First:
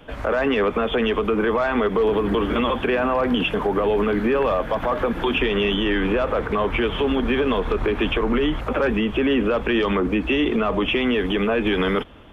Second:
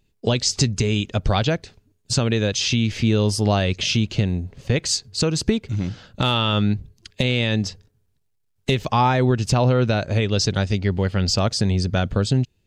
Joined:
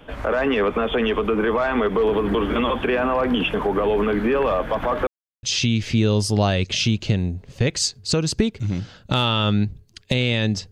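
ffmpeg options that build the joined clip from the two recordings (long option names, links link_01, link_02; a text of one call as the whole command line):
ffmpeg -i cue0.wav -i cue1.wav -filter_complex "[0:a]apad=whole_dur=10.71,atrim=end=10.71,asplit=2[link_01][link_02];[link_01]atrim=end=5.07,asetpts=PTS-STARTPTS,afade=type=out:start_time=5.066:duration=0.004:curve=hsin[link_03];[link_02]atrim=start=5.07:end=5.43,asetpts=PTS-STARTPTS,volume=0[link_04];[1:a]atrim=start=2.52:end=7.8,asetpts=PTS-STARTPTS,afade=type=in:duration=0.004:curve=hsin[link_05];[link_03][link_04][link_05]concat=n=3:v=0:a=1" out.wav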